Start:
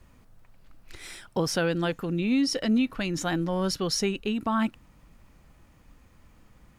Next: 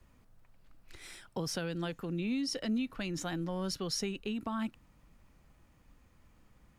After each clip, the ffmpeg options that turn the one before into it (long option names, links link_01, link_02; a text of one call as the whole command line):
ffmpeg -i in.wav -filter_complex "[0:a]acrossover=split=210|3000[link_01][link_02][link_03];[link_02]acompressor=threshold=-28dB:ratio=6[link_04];[link_01][link_04][link_03]amix=inputs=3:normalize=0,volume=-7dB" out.wav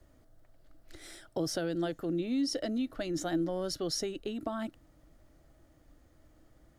ffmpeg -i in.wav -af "equalizer=frequency=200:width_type=o:width=0.33:gain=-9,equalizer=frequency=315:width_type=o:width=0.33:gain=10,equalizer=frequency=630:width_type=o:width=0.33:gain=10,equalizer=frequency=1000:width_type=o:width=0.33:gain=-8,equalizer=frequency=2500:width_type=o:width=0.33:gain=-10,volume=1dB" out.wav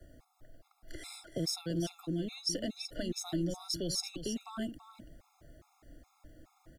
ffmpeg -i in.wav -filter_complex "[0:a]acrossover=split=200|3000[link_01][link_02][link_03];[link_02]acompressor=threshold=-47dB:ratio=3[link_04];[link_01][link_04][link_03]amix=inputs=3:normalize=0,aecho=1:1:334:0.316,afftfilt=real='re*gt(sin(2*PI*2.4*pts/sr)*(1-2*mod(floor(b*sr/1024/690),2)),0)':imag='im*gt(sin(2*PI*2.4*pts/sr)*(1-2*mod(floor(b*sr/1024/690),2)),0)':win_size=1024:overlap=0.75,volume=6dB" out.wav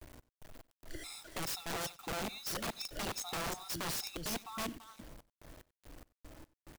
ffmpeg -i in.wav -af "acrusher=bits=8:mix=0:aa=0.000001,aeval=exprs='(mod(42.2*val(0)+1,2)-1)/42.2':channel_layout=same,aecho=1:1:93:0.0841" out.wav